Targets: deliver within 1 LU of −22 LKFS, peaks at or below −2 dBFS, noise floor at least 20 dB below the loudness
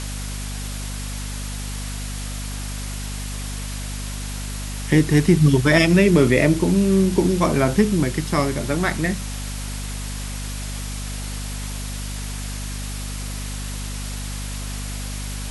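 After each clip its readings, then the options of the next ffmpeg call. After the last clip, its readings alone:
mains hum 50 Hz; hum harmonics up to 250 Hz; level of the hum −27 dBFS; background noise floor −29 dBFS; target noise floor −43 dBFS; integrated loudness −22.5 LKFS; sample peak −2.5 dBFS; target loudness −22.0 LKFS
→ -af "bandreject=frequency=50:width_type=h:width=4,bandreject=frequency=100:width_type=h:width=4,bandreject=frequency=150:width_type=h:width=4,bandreject=frequency=200:width_type=h:width=4,bandreject=frequency=250:width_type=h:width=4"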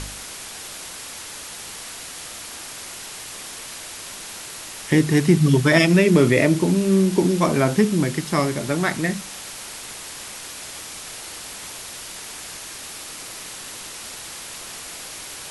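mains hum none found; background noise floor −36 dBFS; target noise floor −44 dBFS
→ -af "afftdn=noise_reduction=8:noise_floor=-36"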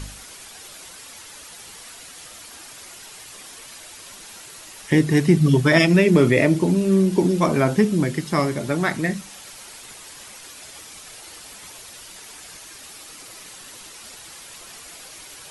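background noise floor −42 dBFS; integrated loudness −18.5 LKFS; sample peak −2.5 dBFS; target loudness −22.0 LKFS
→ -af "volume=-3.5dB"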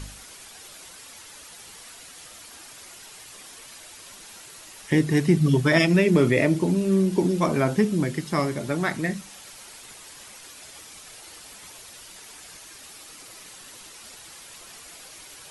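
integrated loudness −22.0 LKFS; sample peak −6.0 dBFS; background noise floor −45 dBFS

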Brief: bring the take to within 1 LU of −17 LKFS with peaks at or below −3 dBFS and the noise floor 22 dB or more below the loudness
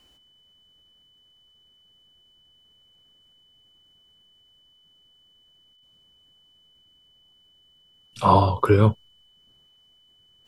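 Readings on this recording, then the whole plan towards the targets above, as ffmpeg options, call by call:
interfering tone 3,000 Hz; level of the tone −57 dBFS; integrated loudness −19.5 LKFS; sample peak −4.0 dBFS; target loudness −17.0 LKFS
→ -af "bandreject=frequency=3000:width=30"
-af "volume=2.5dB,alimiter=limit=-3dB:level=0:latency=1"

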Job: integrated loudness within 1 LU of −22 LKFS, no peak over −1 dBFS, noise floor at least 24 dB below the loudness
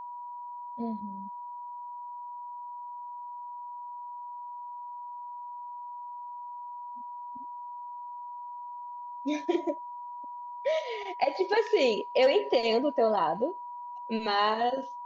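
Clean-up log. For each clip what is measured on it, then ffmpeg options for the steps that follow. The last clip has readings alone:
interfering tone 970 Hz; level of the tone −38 dBFS; integrated loudness −32.5 LKFS; sample peak −14.0 dBFS; target loudness −22.0 LKFS
→ -af "bandreject=frequency=970:width=30"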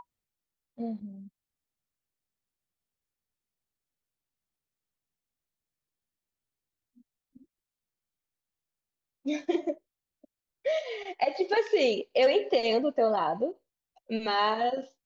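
interfering tone none found; integrated loudness −28.5 LKFS; sample peak −13.5 dBFS; target loudness −22.0 LKFS
→ -af "volume=6.5dB"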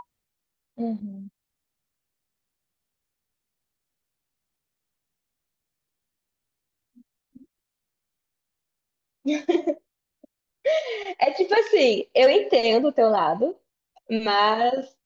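integrated loudness −22.0 LKFS; sample peak −7.0 dBFS; background noise floor −84 dBFS

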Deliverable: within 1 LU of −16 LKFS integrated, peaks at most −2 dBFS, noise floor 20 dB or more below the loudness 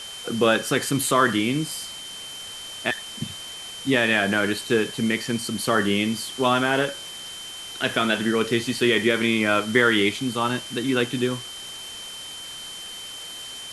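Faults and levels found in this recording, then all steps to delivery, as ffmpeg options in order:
interfering tone 3,100 Hz; level of the tone −36 dBFS; background noise floor −37 dBFS; target noise floor −43 dBFS; integrated loudness −22.5 LKFS; sample peak −5.5 dBFS; target loudness −16.0 LKFS
→ -af "bandreject=frequency=3100:width=30"
-af "afftdn=noise_reduction=6:noise_floor=-37"
-af "volume=6.5dB,alimiter=limit=-2dB:level=0:latency=1"

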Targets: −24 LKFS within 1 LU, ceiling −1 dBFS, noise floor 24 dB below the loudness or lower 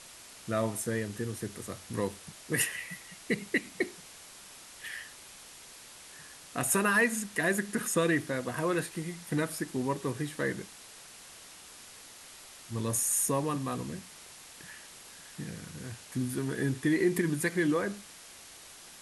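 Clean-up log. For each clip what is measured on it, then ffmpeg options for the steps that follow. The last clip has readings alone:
background noise floor −51 dBFS; target noise floor −56 dBFS; integrated loudness −31.5 LKFS; sample peak −15.0 dBFS; target loudness −24.0 LKFS
→ -af "afftdn=noise_reduction=6:noise_floor=-51"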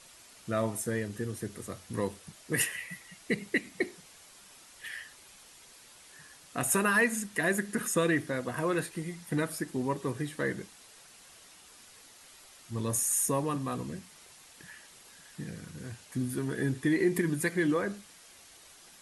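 background noise floor −55 dBFS; target noise floor −56 dBFS
→ -af "afftdn=noise_reduction=6:noise_floor=-55"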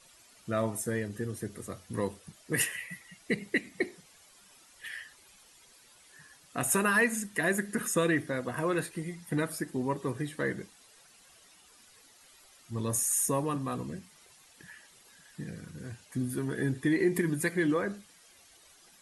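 background noise floor −59 dBFS; integrated loudness −31.5 LKFS; sample peak −15.0 dBFS; target loudness −24.0 LKFS
→ -af "volume=7.5dB"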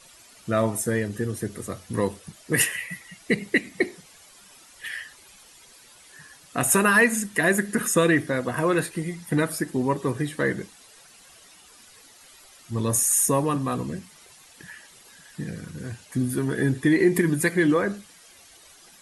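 integrated loudness −24.0 LKFS; sample peak −7.5 dBFS; background noise floor −52 dBFS

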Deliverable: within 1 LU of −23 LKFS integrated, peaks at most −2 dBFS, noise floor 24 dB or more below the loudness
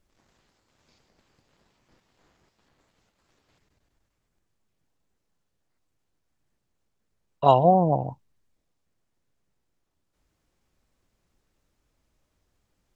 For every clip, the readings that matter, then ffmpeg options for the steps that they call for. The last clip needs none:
integrated loudness −21.0 LKFS; sample peak −4.0 dBFS; target loudness −23.0 LKFS
→ -af "volume=-2dB"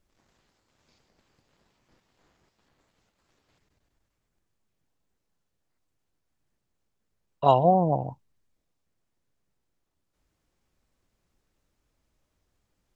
integrated loudness −22.5 LKFS; sample peak −6.0 dBFS; background noise floor −79 dBFS

